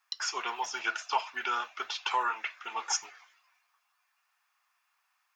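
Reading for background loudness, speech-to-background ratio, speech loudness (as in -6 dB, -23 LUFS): -42.0 LUFS, 9.0 dB, -33.0 LUFS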